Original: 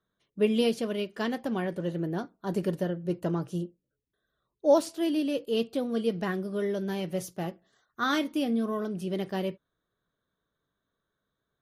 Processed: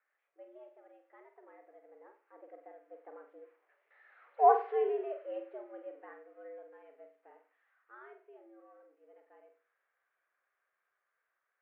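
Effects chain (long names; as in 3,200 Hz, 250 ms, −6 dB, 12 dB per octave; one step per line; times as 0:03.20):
spike at every zero crossing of −28 dBFS
source passing by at 0:04.61, 19 m/s, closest 3.1 metres
single-sideband voice off tune +120 Hz 260–2,000 Hz
flutter between parallel walls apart 8.2 metres, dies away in 0.38 s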